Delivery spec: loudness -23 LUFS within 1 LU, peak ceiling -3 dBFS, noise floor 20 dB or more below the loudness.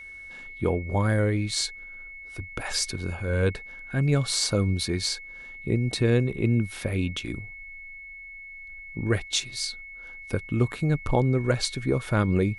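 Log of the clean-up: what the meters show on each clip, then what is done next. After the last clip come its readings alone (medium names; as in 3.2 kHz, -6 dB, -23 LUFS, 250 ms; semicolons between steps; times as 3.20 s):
steady tone 2.2 kHz; tone level -40 dBFS; loudness -26.5 LUFS; peak level -10.0 dBFS; loudness target -23.0 LUFS
-> band-stop 2.2 kHz, Q 30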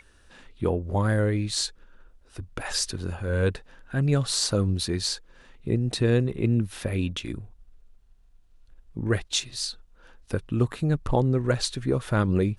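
steady tone not found; loudness -26.5 LUFS; peak level -10.0 dBFS; loudness target -23.0 LUFS
-> trim +3.5 dB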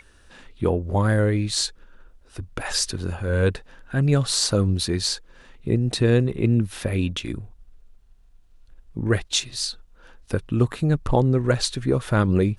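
loudness -23.0 LUFS; peak level -6.5 dBFS; noise floor -53 dBFS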